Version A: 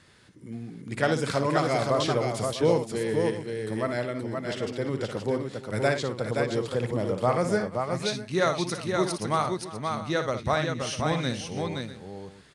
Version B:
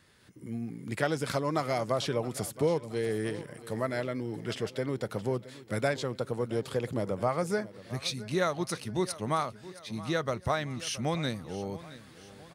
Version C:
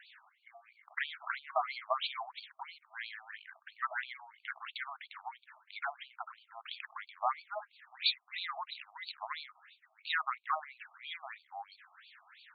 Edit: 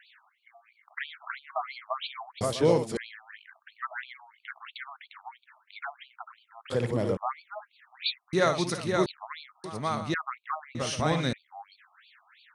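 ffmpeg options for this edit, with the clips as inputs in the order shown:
-filter_complex "[0:a]asplit=5[a][b][c][d][e];[2:a]asplit=6[f][g][h][i][j][k];[f]atrim=end=2.412[l];[a]atrim=start=2.408:end=2.972[m];[g]atrim=start=2.968:end=6.702[n];[b]atrim=start=6.698:end=7.172[o];[h]atrim=start=7.168:end=8.332[p];[c]atrim=start=8.328:end=9.062[q];[i]atrim=start=9.058:end=9.642[r];[d]atrim=start=9.638:end=10.142[s];[j]atrim=start=10.138:end=10.752[t];[e]atrim=start=10.748:end=11.332[u];[k]atrim=start=11.328[v];[l][m]acrossfade=d=0.004:c1=hsin:c2=hsin[w];[w][n]acrossfade=d=0.004:c1=hsin:c2=hsin[x];[x][o]acrossfade=d=0.004:c1=hsin:c2=hsin[y];[y][p]acrossfade=d=0.004:c1=hsin:c2=hsin[z];[z][q]acrossfade=d=0.004:c1=hsin:c2=hsin[aa];[aa][r]acrossfade=d=0.004:c1=hsin:c2=hsin[ab];[ab][s]acrossfade=d=0.004:c1=hsin:c2=hsin[ac];[ac][t]acrossfade=d=0.004:c1=hsin:c2=hsin[ad];[ad][u]acrossfade=d=0.004:c1=hsin:c2=hsin[ae];[ae][v]acrossfade=d=0.004:c1=hsin:c2=hsin"

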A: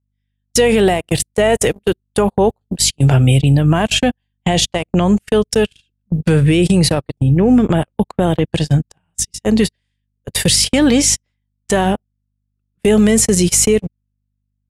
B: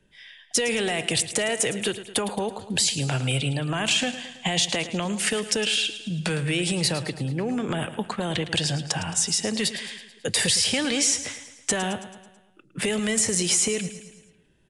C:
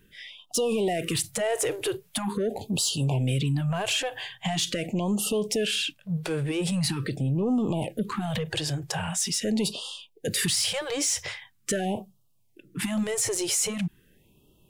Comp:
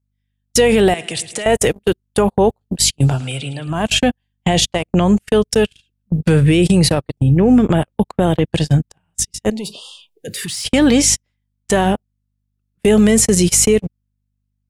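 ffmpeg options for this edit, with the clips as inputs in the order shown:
-filter_complex "[1:a]asplit=2[a][b];[0:a]asplit=4[c][d][e][f];[c]atrim=end=0.942[g];[a]atrim=start=0.938:end=1.462[h];[d]atrim=start=1.458:end=3.25[i];[b]atrim=start=3.01:end=3.89[j];[e]atrim=start=3.65:end=9.502[k];[2:a]atrim=start=9.498:end=10.652[l];[f]atrim=start=10.648[m];[g][h]acrossfade=d=0.004:c1=hsin:c2=hsin[n];[n][i]acrossfade=d=0.004:c1=hsin:c2=hsin[o];[o][j]acrossfade=d=0.24:c1=tri:c2=tri[p];[p][k]acrossfade=d=0.24:c1=tri:c2=tri[q];[q][l]acrossfade=d=0.004:c1=hsin:c2=hsin[r];[r][m]acrossfade=d=0.004:c1=hsin:c2=hsin"

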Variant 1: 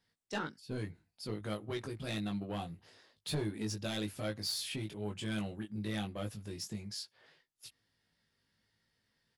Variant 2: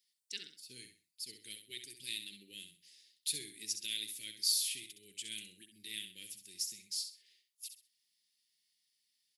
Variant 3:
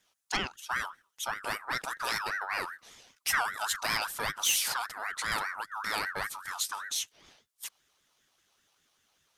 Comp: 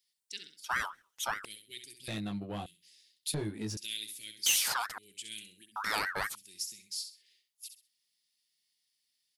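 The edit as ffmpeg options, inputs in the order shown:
-filter_complex "[2:a]asplit=3[a][b][c];[0:a]asplit=2[d][e];[1:a]asplit=6[f][g][h][i][j][k];[f]atrim=end=0.642[l];[a]atrim=start=0.638:end=1.452[m];[g]atrim=start=1.448:end=2.082[n];[d]atrim=start=2.078:end=2.662[o];[h]atrim=start=2.658:end=3.342[p];[e]atrim=start=3.338:end=3.772[q];[i]atrim=start=3.768:end=4.462[r];[b]atrim=start=4.458:end=4.982[s];[j]atrim=start=4.978:end=5.762[t];[c]atrim=start=5.758:end=6.352[u];[k]atrim=start=6.348[v];[l][m]acrossfade=d=0.004:c1=hsin:c2=hsin[w];[w][n]acrossfade=d=0.004:c1=hsin:c2=hsin[x];[x][o]acrossfade=d=0.004:c1=hsin:c2=hsin[y];[y][p]acrossfade=d=0.004:c1=hsin:c2=hsin[z];[z][q]acrossfade=d=0.004:c1=hsin:c2=hsin[aa];[aa][r]acrossfade=d=0.004:c1=hsin:c2=hsin[ab];[ab][s]acrossfade=d=0.004:c1=hsin:c2=hsin[ac];[ac][t]acrossfade=d=0.004:c1=hsin:c2=hsin[ad];[ad][u]acrossfade=d=0.004:c1=hsin:c2=hsin[ae];[ae][v]acrossfade=d=0.004:c1=hsin:c2=hsin"

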